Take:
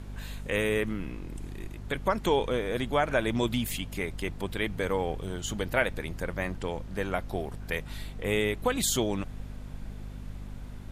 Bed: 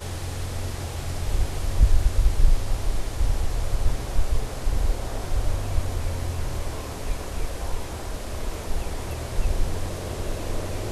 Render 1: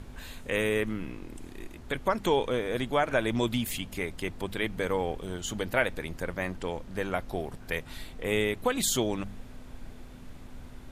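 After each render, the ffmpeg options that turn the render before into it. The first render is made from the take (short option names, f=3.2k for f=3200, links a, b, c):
-af "bandreject=f=50:t=h:w=4,bandreject=f=100:t=h:w=4,bandreject=f=150:t=h:w=4,bandreject=f=200:t=h:w=4"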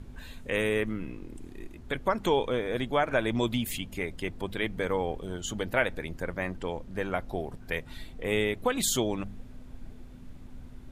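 -af "afftdn=nr=7:nf=-46"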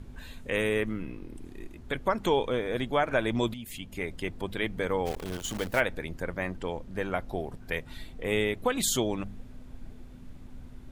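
-filter_complex "[0:a]asettb=1/sr,asplit=3[a][b][c];[a]atrim=end=1.024[d];[b]atrim=start=1.02:end=1.45,asetpts=PTS-STARTPTS,afade=t=in:d=0.004:c=qsin,afade=t=out:st=0.426:d=0.004:c=qsin,equalizer=f=7.1k:w=4.7:g=-7.5[e];[c]atrim=start=1.446[f];[d][e]acrossfade=d=0.004:c1=hsin:c2=qsin[g];[g][f]acrossfade=d=0.004:c1=qsin:c2=hsin,asplit=3[h][i][j];[h]afade=t=out:st=5.05:d=0.02[k];[i]acrusher=bits=7:dc=4:mix=0:aa=0.000001,afade=t=in:st=5.05:d=0.02,afade=t=out:st=5.79:d=0.02[l];[j]afade=t=in:st=5.79:d=0.02[m];[k][l][m]amix=inputs=3:normalize=0,asplit=2[n][o];[n]atrim=end=3.54,asetpts=PTS-STARTPTS,afade=t=out:st=3.536:d=0.004:c=hsin:silence=0.188365[p];[o]atrim=start=3.54,asetpts=PTS-STARTPTS,afade=t=in:d=0.55:silence=0.188365[q];[p][q]concat=n=2:v=0:a=1"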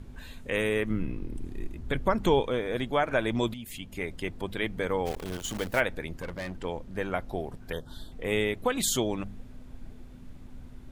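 -filter_complex "[0:a]asettb=1/sr,asplit=3[a][b][c];[a]atrim=end=0.904[d];[b]atrim=start=0.9:end=2.41,asetpts=PTS-STARTPTS,afade=t=in:d=0.004:c=qsin,afade=t=out:st=1.506:d=0.004:c=qsin,lowshelf=f=230:g=9[e];[c]atrim=start=2.406[f];[d][e]acrossfade=d=0.004:c1=hsin:c2=qsin[g];[g][f]acrossfade=d=0.004:c1=qsin:c2=hsin,asettb=1/sr,asplit=3[h][i][j];[h]atrim=end=6.134[k];[i]atrim=start=6.13:end=6.65,asetpts=PTS-STARTPTS,afade=t=in:d=0.004:c=qsin,afade=t=out:st=0.516:d=0.004:c=qsin,volume=31.5dB,asoftclip=hard,volume=-31.5dB[l];[j]atrim=start=6.646[m];[k][l]acrossfade=d=0.004:c1=hsin:c2=qsin[n];[n][m]acrossfade=d=0.004:c1=qsin:c2=hsin,asettb=1/sr,asplit=3[o][p][q];[o]atrim=end=7.724[r];[p]atrim=start=7.72:end=8.12,asetpts=PTS-STARTPTS,afade=t=in:d=0.004:c=qsin,afade=t=out:st=0.396:d=0.004:c=qsin,asuperstop=centerf=2300:order=12:qfactor=1.7[s];[q]atrim=start=8.116[t];[r][s]acrossfade=d=0.004:c1=hsin:c2=qsin[u];[u][t]acrossfade=d=0.004:c1=qsin:c2=hsin"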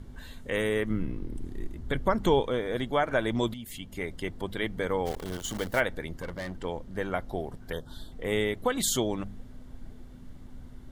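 -af "bandreject=f=2.5k:w=6.9"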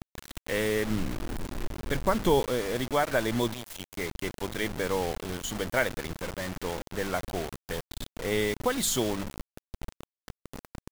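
-af "acrusher=bits=5:mix=0:aa=0.000001"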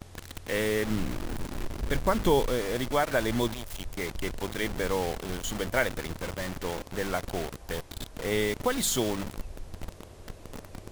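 -filter_complex "[1:a]volume=-18dB[a];[0:a][a]amix=inputs=2:normalize=0"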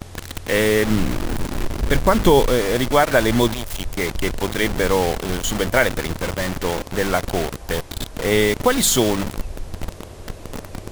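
-af "volume=10.5dB,alimiter=limit=-3dB:level=0:latency=1"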